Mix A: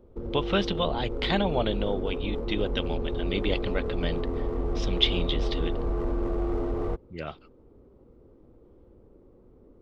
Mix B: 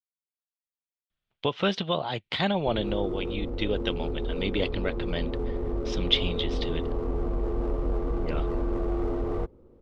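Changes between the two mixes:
speech: entry +1.10 s; background: entry +2.50 s

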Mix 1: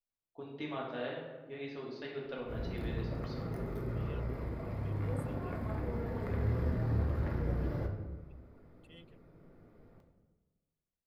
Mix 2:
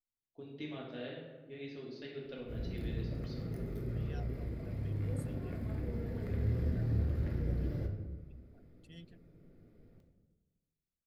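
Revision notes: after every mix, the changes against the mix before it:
second voice: remove fixed phaser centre 1100 Hz, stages 8; master: add bell 1000 Hz -14 dB 1.4 oct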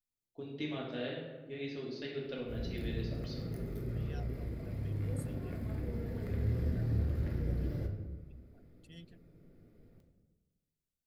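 first voice +4.5 dB; master: add high shelf 5900 Hz +5 dB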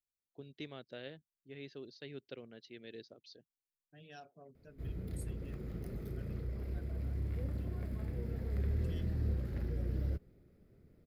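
background: entry +2.30 s; reverb: off

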